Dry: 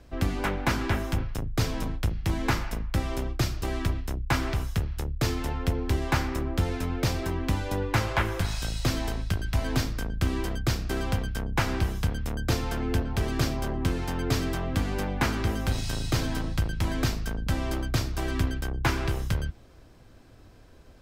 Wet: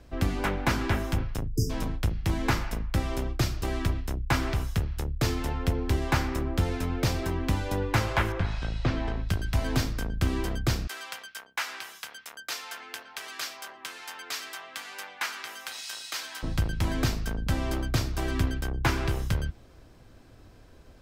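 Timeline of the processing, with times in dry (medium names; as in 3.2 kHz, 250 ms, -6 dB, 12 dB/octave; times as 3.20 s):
1.48–1.70 s: spectral selection erased 460–4800 Hz
8.32–9.29 s: low-pass 2.7 kHz
10.87–16.43 s: high-pass 1.3 kHz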